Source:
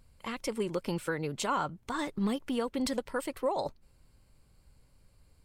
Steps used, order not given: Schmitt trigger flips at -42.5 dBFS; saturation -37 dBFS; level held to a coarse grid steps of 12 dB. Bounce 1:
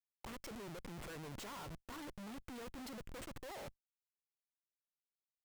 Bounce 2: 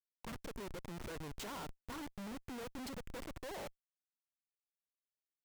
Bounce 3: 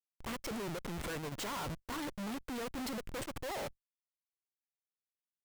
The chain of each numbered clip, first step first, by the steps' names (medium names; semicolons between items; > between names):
saturation > Schmitt trigger > level held to a coarse grid; level held to a coarse grid > saturation > Schmitt trigger; Schmitt trigger > level held to a coarse grid > saturation